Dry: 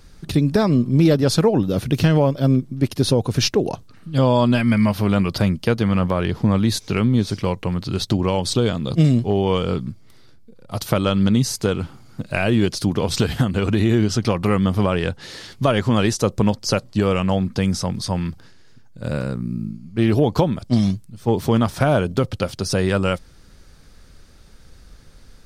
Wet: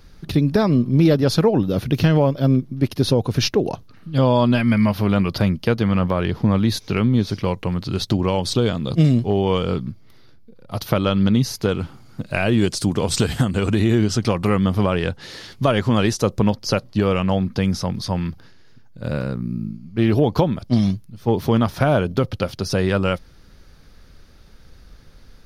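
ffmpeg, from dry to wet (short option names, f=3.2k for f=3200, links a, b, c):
-af "asetnsamples=n=441:p=0,asendcmd='7.48 equalizer g -5.5;9.79 equalizer g -14;11.69 equalizer g -4.5;12.58 equalizer g 7;13.78 equalizer g 1;14.5 equalizer g -5.5;16.39 equalizer g -12',equalizer=f=8k:t=o:w=0.46:g=-12"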